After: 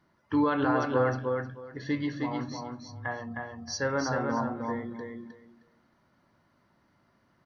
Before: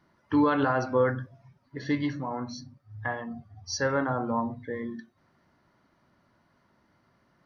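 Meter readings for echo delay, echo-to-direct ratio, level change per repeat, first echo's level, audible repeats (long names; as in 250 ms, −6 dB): 311 ms, −4.0 dB, −14.5 dB, −4.0 dB, 3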